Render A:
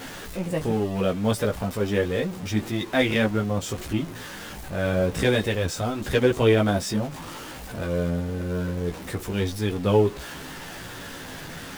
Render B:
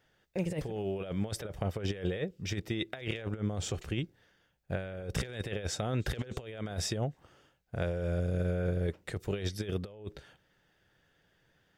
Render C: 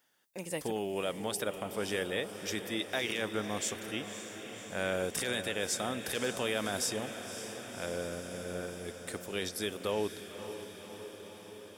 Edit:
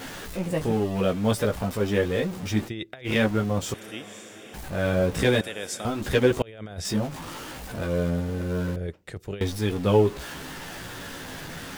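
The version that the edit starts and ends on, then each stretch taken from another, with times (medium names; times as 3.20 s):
A
2.67–3.07 s: from B, crossfade 0.06 s
3.74–4.54 s: from C
5.41–5.85 s: from C
6.42–6.85 s: from B
8.76–9.41 s: from B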